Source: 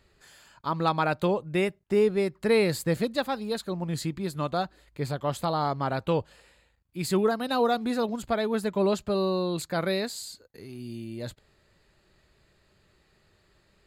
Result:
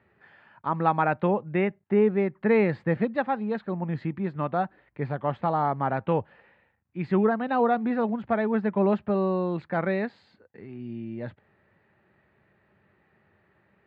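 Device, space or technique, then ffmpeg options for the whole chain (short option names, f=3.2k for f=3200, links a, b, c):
bass cabinet: -af "highpass=f=84:w=0.5412,highpass=f=84:w=1.3066,equalizer=f=210:t=q:w=4:g=5,equalizer=f=820:t=q:w=4:g=5,equalizer=f=1.8k:t=q:w=4:g=4,lowpass=f=2.4k:w=0.5412,lowpass=f=2.4k:w=1.3066"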